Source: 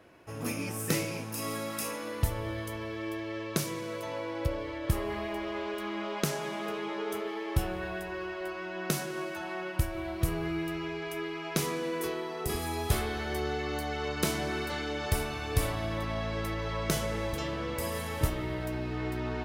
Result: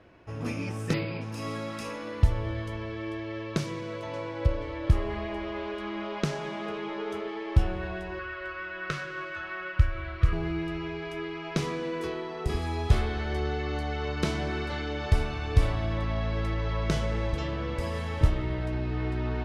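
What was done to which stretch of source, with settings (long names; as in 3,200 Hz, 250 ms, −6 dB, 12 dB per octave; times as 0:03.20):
0:00.93–0:01.21: time-frequency box erased 5,100–12,000 Hz
0:03.65–0:04.40: delay throw 480 ms, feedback 30%, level −9 dB
0:08.19–0:10.33: drawn EQ curve 120 Hz 0 dB, 220 Hz −17 dB, 540 Hz −1 dB, 820 Hz −15 dB, 1,200 Hz +8 dB, 11,000 Hz −10 dB
whole clip: low-pass filter 4,800 Hz 12 dB per octave; low-shelf EQ 100 Hz +12 dB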